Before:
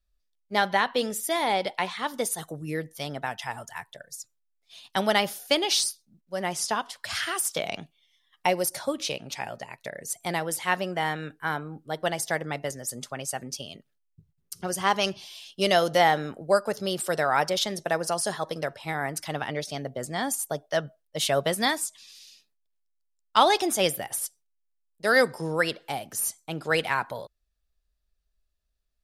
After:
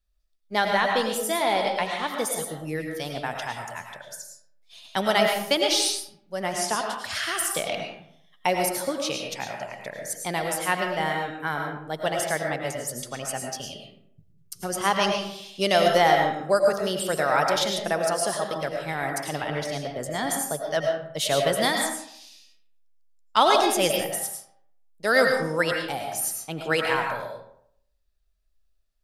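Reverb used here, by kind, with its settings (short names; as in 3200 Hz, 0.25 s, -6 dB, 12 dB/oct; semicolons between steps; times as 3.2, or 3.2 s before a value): digital reverb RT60 0.68 s, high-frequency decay 0.6×, pre-delay 65 ms, DRR 2 dB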